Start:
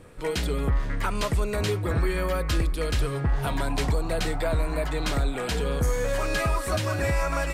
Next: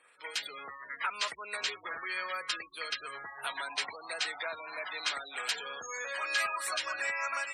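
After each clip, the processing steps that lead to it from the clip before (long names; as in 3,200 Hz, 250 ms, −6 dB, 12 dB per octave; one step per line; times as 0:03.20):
gate on every frequency bin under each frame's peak −30 dB strong
high-pass filter 1,500 Hz 12 dB per octave
automatic gain control gain up to 3.5 dB
level −2 dB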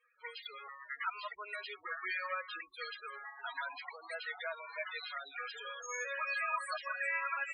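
brickwall limiter −27 dBFS, peak gain reduction 8.5 dB
spectral peaks only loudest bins 16
expander for the loud parts 1.5 to 1, over −53 dBFS
level +2.5 dB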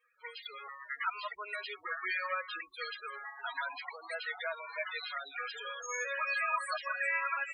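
automatic gain control gain up to 3 dB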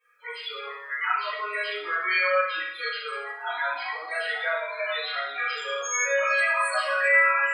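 convolution reverb RT60 0.70 s, pre-delay 7 ms, DRR −10.5 dB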